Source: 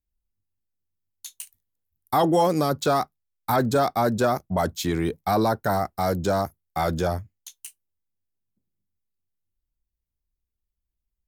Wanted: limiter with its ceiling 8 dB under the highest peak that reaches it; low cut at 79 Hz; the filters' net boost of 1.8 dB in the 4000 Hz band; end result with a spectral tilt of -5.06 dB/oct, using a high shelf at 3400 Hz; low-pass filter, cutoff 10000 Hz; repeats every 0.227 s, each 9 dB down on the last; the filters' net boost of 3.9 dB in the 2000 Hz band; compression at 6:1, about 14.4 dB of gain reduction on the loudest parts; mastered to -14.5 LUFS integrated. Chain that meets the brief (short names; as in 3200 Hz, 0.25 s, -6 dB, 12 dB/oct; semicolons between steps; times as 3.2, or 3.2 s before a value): HPF 79 Hz; LPF 10000 Hz; bell 2000 Hz +6.5 dB; high shelf 3400 Hz -7.5 dB; bell 4000 Hz +5.5 dB; compressor 6:1, threshold -32 dBFS; limiter -26 dBFS; feedback echo 0.227 s, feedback 35%, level -9 dB; gain +23 dB